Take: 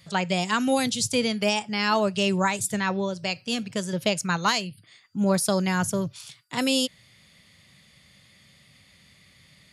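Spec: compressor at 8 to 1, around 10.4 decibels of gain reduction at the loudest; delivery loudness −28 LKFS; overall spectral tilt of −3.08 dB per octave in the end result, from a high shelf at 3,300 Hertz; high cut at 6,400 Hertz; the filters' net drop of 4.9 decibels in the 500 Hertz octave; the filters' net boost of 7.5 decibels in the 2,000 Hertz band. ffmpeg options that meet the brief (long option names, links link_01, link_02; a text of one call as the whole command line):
ffmpeg -i in.wav -af "lowpass=6400,equalizer=frequency=500:width_type=o:gain=-7,equalizer=frequency=2000:width_type=o:gain=8.5,highshelf=frequency=3300:gain=5,acompressor=threshold=-26dB:ratio=8,volume=2.5dB" out.wav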